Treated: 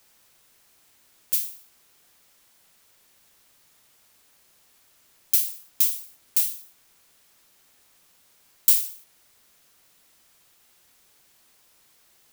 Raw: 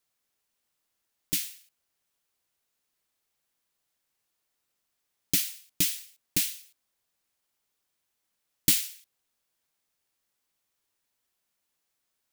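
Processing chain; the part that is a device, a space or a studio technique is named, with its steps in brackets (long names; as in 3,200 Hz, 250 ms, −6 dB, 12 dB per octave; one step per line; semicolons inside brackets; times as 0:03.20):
turntable without a phono preamp (RIAA equalisation recording; white noise bed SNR 28 dB)
level −11 dB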